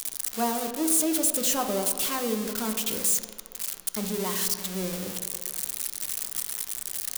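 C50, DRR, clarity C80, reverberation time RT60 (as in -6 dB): 8.0 dB, 5.0 dB, 9.0 dB, not exponential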